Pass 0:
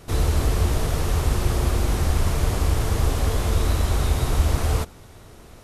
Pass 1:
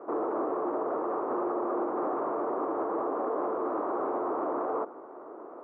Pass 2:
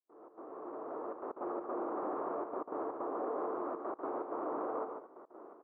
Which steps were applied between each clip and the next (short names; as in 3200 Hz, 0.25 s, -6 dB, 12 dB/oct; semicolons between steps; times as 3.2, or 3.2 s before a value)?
elliptic band-pass 310–1200 Hz, stop band 60 dB; limiter -30.5 dBFS, peak gain reduction 9 dB; gain +7.5 dB
opening faded in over 1.55 s; step gate ".xx.xxxxxxxx.x" 160 bpm -24 dB; echo 0.143 s -6 dB; gain -7.5 dB